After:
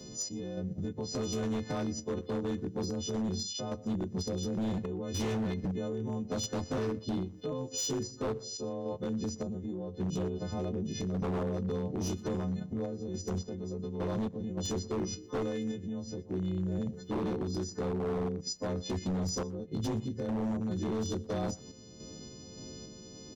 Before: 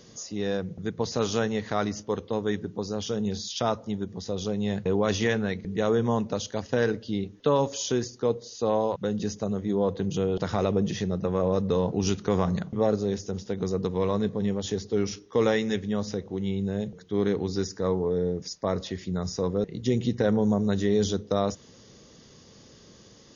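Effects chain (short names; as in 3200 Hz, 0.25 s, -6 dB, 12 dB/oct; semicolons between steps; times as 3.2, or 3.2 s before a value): frequency quantiser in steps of 3 st; EQ curve 300 Hz 0 dB, 1600 Hz -18 dB, 3700 Hz -14 dB; in parallel at -2.5 dB: level quantiser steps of 21 dB; on the sum: transient shaper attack -6 dB, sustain -2 dB; compressor 12:1, threshold -35 dBFS, peak gain reduction 15 dB; random-step tremolo, depth 65%; wavefolder -35.5 dBFS; on a send: echo 0.12 s -23 dB; on the sum: gain +8.5 dB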